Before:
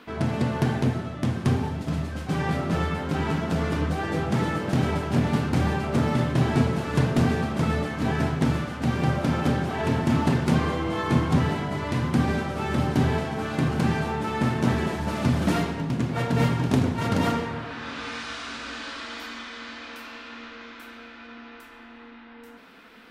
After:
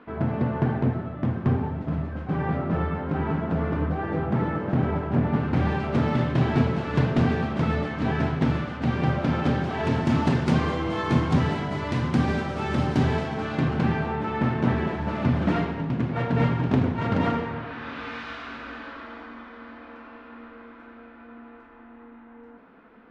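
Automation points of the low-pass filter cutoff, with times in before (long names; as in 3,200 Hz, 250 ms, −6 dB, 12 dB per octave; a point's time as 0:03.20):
0:05.30 1,600 Hz
0:05.77 3,700 Hz
0:09.27 3,700 Hz
0:10.07 6,100 Hz
0:13.15 6,100 Hz
0:14.03 2,600 Hz
0:18.29 2,600 Hz
0:19.31 1,200 Hz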